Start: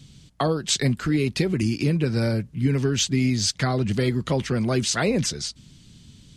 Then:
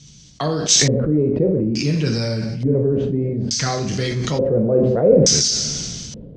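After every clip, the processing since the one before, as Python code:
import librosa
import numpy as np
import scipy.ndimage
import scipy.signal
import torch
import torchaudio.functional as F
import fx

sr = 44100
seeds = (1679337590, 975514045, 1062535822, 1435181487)

y = fx.rev_double_slope(x, sr, seeds[0], early_s=0.62, late_s=2.3, knee_db=-18, drr_db=3.5)
y = fx.filter_lfo_lowpass(y, sr, shape='square', hz=0.57, low_hz=520.0, high_hz=6000.0, q=5.7)
y = fx.sustainer(y, sr, db_per_s=24.0)
y = y * librosa.db_to_amplitude(-1.5)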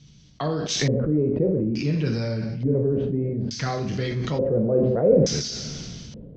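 y = fx.air_absorb(x, sr, metres=170.0)
y = y * librosa.db_to_amplitude(-4.0)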